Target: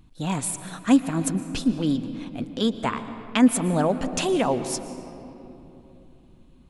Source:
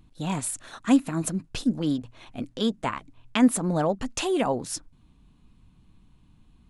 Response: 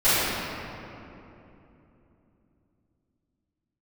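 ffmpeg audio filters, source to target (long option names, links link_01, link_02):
-filter_complex "[0:a]asplit=2[link_01][link_02];[1:a]atrim=start_sample=2205,adelay=108[link_03];[link_02][link_03]afir=irnorm=-1:irlink=0,volume=-31.5dB[link_04];[link_01][link_04]amix=inputs=2:normalize=0,volume=2dB"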